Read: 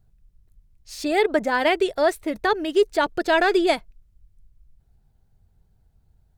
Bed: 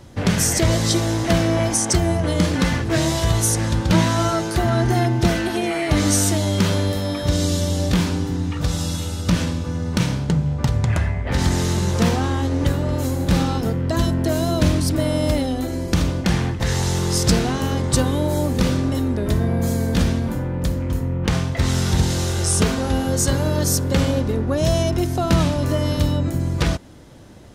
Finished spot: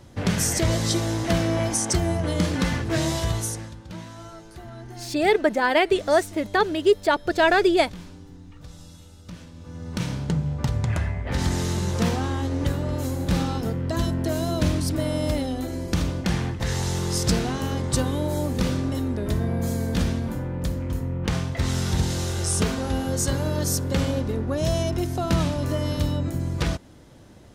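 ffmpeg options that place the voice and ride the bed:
-filter_complex "[0:a]adelay=4100,volume=1.06[s0];[1:a]volume=3.98,afade=t=out:st=3.16:d=0.59:silence=0.141254,afade=t=in:st=9.52:d=0.74:silence=0.149624[s1];[s0][s1]amix=inputs=2:normalize=0"

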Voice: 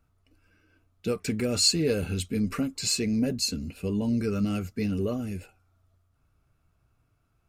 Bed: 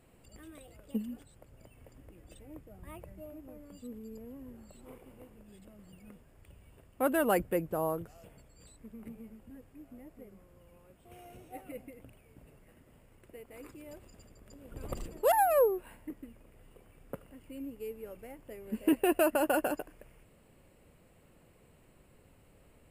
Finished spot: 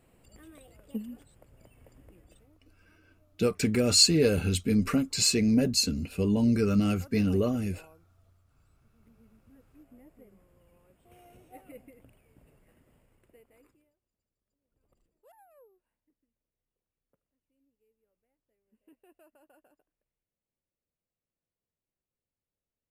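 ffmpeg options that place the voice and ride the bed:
-filter_complex "[0:a]adelay=2350,volume=1.33[s0];[1:a]volume=8.91,afade=t=out:st=2.14:d=0.44:silence=0.0707946,afade=t=in:st=8.93:d=0.99:silence=0.1,afade=t=out:st=12.87:d=1.06:silence=0.0316228[s1];[s0][s1]amix=inputs=2:normalize=0"

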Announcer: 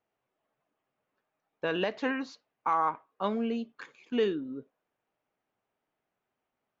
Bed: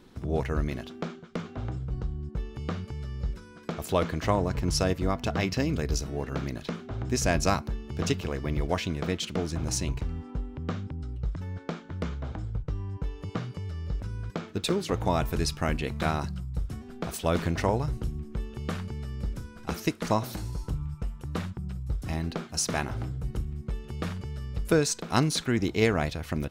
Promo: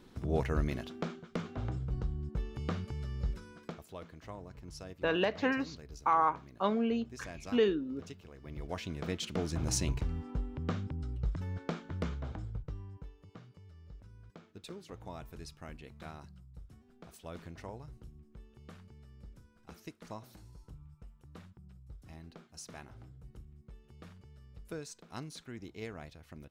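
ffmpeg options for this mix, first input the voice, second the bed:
-filter_complex "[0:a]adelay=3400,volume=1[s0];[1:a]volume=5.96,afade=t=out:st=3.5:d=0.34:silence=0.125893,afade=t=in:st=8.36:d=1.37:silence=0.11885,afade=t=out:st=11.88:d=1.3:silence=0.141254[s1];[s0][s1]amix=inputs=2:normalize=0"

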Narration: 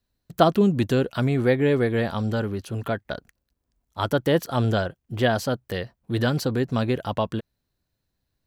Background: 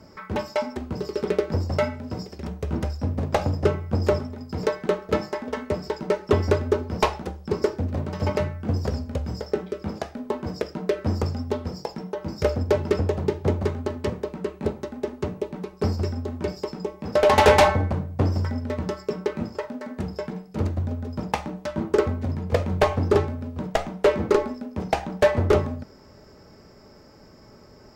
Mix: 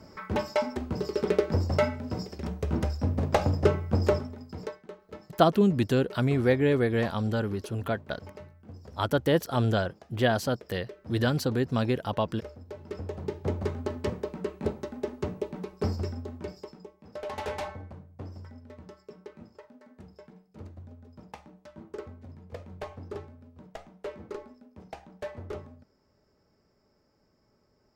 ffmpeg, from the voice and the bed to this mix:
-filter_complex "[0:a]adelay=5000,volume=0.708[s0];[1:a]volume=6.31,afade=t=out:st=3.94:d=0.89:silence=0.1,afade=t=in:st=12.76:d=1.16:silence=0.133352,afade=t=out:st=15.69:d=1.25:silence=0.16788[s1];[s0][s1]amix=inputs=2:normalize=0"

